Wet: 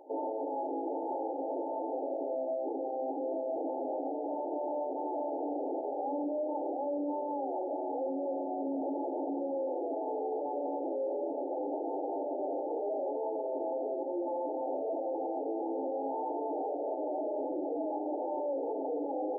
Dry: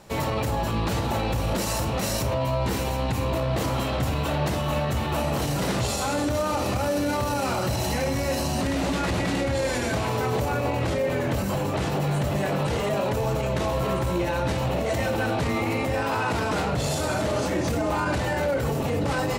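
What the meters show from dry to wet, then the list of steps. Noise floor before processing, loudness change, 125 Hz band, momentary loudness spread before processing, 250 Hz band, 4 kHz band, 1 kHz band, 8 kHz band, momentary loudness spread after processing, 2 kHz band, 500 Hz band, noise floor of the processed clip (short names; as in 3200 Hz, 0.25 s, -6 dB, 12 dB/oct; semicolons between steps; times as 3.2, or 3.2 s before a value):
-27 dBFS, -9.5 dB, under -40 dB, 1 LU, -9.0 dB, under -40 dB, -8.0 dB, under -40 dB, 1 LU, under -40 dB, -6.0 dB, -36 dBFS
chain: FFT band-pass 260–900 Hz; limiter -27.5 dBFS, peak gain reduction 10.5 dB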